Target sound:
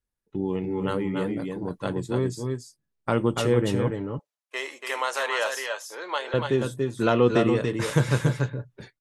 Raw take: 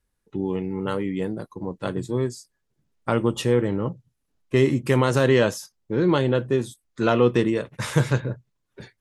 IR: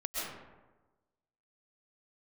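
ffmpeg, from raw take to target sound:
-filter_complex "[0:a]agate=range=-10dB:threshold=-45dB:ratio=16:detection=peak,asettb=1/sr,asplit=3[a][b][c];[a]atrim=end=3.904[d];[b]atrim=start=3.9:end=6.34,asetpts=PTS-STARTPTS,afade=t=in:d=0.004:c=qsin,afade=t=out:st=2.436:d=0.004:c=qsin,highpass=f=650:w=0.5412,highpass=f=650:w=1.3066[e];[c]atrim=start=6.336[f];[d][e]acrossfade=d=0.004:c1=hsin:c2=qsin[g];[g][f]acrossfade=d=0.004:c1=qsin:c2=hsin,aecho=1:1:285|292:0.562|0.251,volume=-1.5dB"

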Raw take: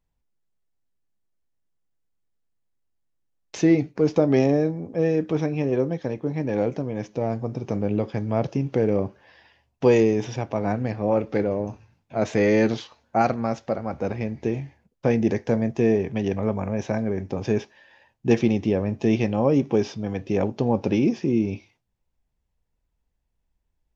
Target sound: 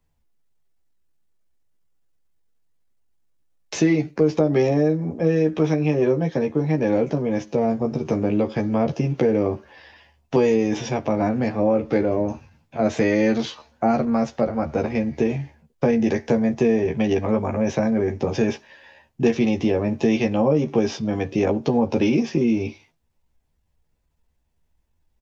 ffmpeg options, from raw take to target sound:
-filter_complex "[0:a]asplit=2[a][b];[b]adelay=13,volume=-3.5dB[c];[a][c]amix=inputs=2:normalize=0,acrossover=split=130|530[d][e][f];[d]acompressor=threshold=-39dB:ratio=4[g];[e]acompressor=threshold=-24dB:ratio=4[h];[f]acompressor=threshold=-30dB:ratio=4[i];[g][h][i]amix=inputs=3:normalize=0,atempo=0.95,volume=5dB"

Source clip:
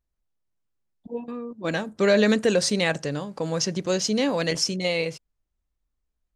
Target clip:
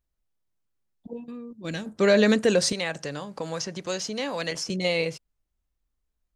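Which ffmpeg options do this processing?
-filter_complex "[0:a]asettb=1/sr,asplit=3[a][b][c];[a]atrim=end=1.134[d];[b]atrim=start=1.13:end=1.86,asetpts=PTS-STARTPTS,afade=t=in:d=0.004:c=qsin,afade=t=out:st=0.726:d=0.004:c=qsin,equalizer=f=860:t=o:w=2.4:g=-12.5[e];[c]atrim=start=1.856[f];[d][e]acrossfade=d=0.004:c1=hsin:c2=qsin[g];[g][f]acrossfade=d=0.004:c1=qsin:c2=hsin,asettb=1/sr,asplit=3[h][i][j];[h]atrim=end=2.724[k];[i]atrim=start=2.72:end=4.7,asetpts=PTS-STARTPTS,afade=t=in:d=0.004:c=qsin,afade=t=out:st=1.976:d=0.004:c=qsin,acrossover=split=610|1900[l][m][n];[l]acompressor=threshold=-35dB:ratio=4[o];[m]acompressor=threshold=-31dB:ratio=4[p];[n]acompressor=threshold=-32dB:ratio=4[q];[o][p][q]amix=inputs=3:normalize=0[r];[j]atrim=start=4.696[s];[k][r]acrossfade=d=0.004:c1=hsin:c2=qsin[t];[t][s]acrossfade=d=0.004:c1=qsin:c2=hsin"

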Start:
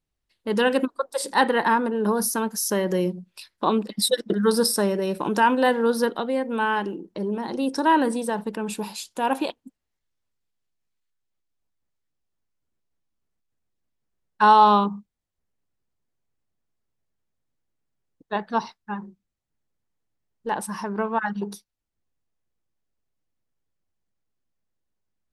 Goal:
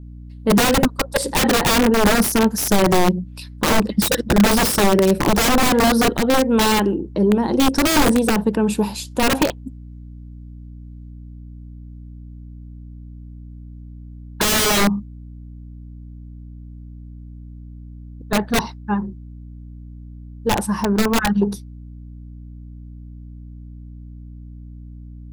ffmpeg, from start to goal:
-af "aeval=exprs='(mod(7.94*val(0)+1,2)-1)/7.94':c=same,aeval=exprs='val(0)+0.00398*(sin(2*PI*60*n/s)+sin(2*PI*2*60*n/s)/2+sin(2*PI*3*60*n/s)/3+sin(2*PI*4*60*n/s)/4+sin(2*PI*5*60*n/s)/5)':c=same,tiltshelf=f=660:g=4.5,volume=8.5dB"

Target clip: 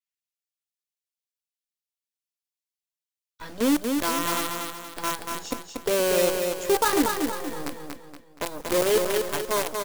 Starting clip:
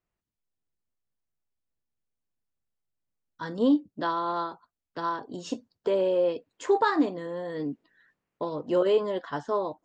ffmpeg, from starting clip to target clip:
-filter_complex "[0:a]acrossover=split=2200[a][b];[a]acrusher=bits=5:dc=4:mix=0:aa=0.000001[c];[c][b]amix=inputs=2:normalize=0,aecho=1:1:236|472|708|944|1180:0.596|0.25|0.105|0.0441|0.0185,adynamicequalizer=threshold=0.00447:dfrequency=6000:dqfactor=0.7:tfrequency=6000:tqfactor=0.7:attack=5:release=100:ratio=0.375:range=4:mode=boostabove:tftype=highshelf"

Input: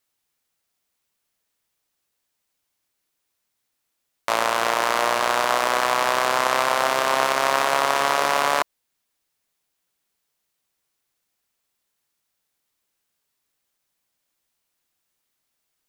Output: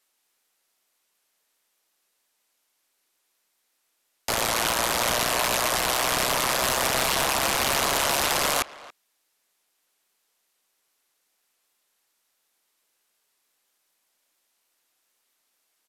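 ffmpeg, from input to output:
-filter_complex "[0:a]highpass=300,asplit=2[a][b];[b]alimiter=limit=-12dB:level=0:latency=1:release=17,volume=-2dB[c];[a][c]amix=inputs=2:normalize=0,aeval=exprs='(mod(6.31*val(0)+1,2)-1)/6.31':c=same,asplit=2[d][e];[e]adelay=280,highpass=300,lowpass=3.4k,asoftclip=type=hard:threshold=-24.5dB,volume=-16dB[f];[d][f]amix=inputs=2:normalize=0" -ar 32000 -c:a sbc -b:a 128k

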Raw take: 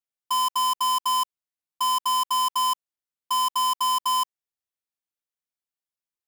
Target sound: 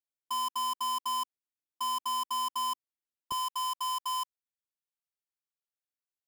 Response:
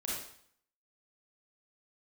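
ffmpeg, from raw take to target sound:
-af "asetnsamples=n=441:p=0,asendcmd='3.32 equalizer g -10.5',equalizer=f=300:t=o:w=1:g=7,volume=-9dB"

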